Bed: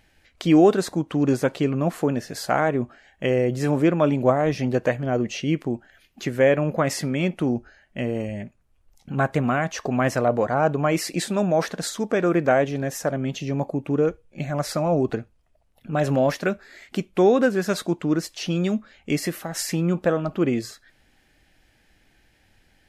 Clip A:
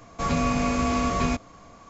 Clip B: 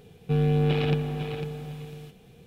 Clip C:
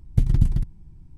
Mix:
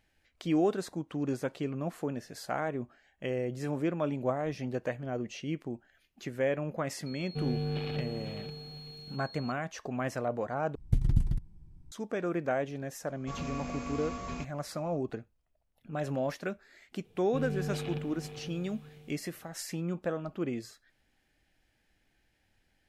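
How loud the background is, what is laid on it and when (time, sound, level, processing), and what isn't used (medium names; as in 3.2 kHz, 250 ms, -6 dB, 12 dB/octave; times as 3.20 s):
bed -12 dB
7.06 s: add B -10.5 dB + whistle 4.3 kHz -37 dBFS
10.75 s: replace with C -7.5 dB
13.08 s: add A -14.5 dB
17.04 s: add B -12.5 dB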